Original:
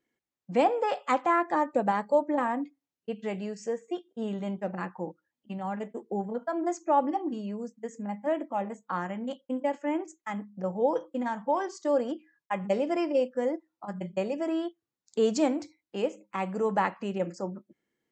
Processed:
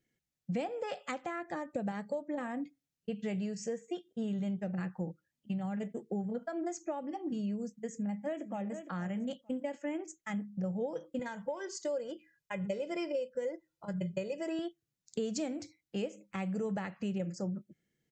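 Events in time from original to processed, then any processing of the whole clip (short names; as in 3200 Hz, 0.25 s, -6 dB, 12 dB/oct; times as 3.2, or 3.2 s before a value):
7.91–8.78 echo throw 0.46 s, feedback 15%, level -13.5 dB
11.19–14.59 comb 2 ms
whole clip: resonant low shelf 200 Hz +10 dB, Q 1.5; compressor, threshold -31 dBFS; fifteen-band EQ 100 Hz -6 dB, 1000 Hz -12 dB, 6300 Hz +3 dB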